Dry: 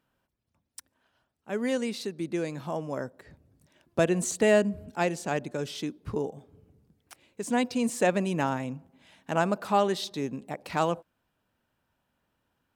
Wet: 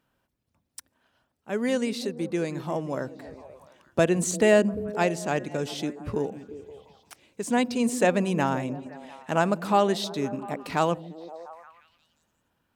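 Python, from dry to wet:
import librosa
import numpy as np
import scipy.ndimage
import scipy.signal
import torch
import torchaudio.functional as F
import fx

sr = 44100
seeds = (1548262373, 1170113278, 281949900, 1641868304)

y = fx.echo_stepped(x, sr, ms=174, hz=210.0, octaves=0.7, feedback_pct=70, wet_db=-9)
y = y * 10.0 ** (2.5 / 20.0)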